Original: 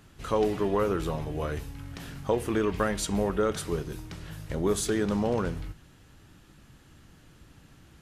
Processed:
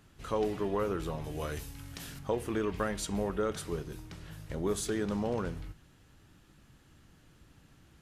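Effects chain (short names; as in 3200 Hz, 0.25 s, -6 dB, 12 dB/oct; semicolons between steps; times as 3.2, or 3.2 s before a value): 1.24–2.19 high shelf 3400 Hz +11.5 dB; gain -5.5 dB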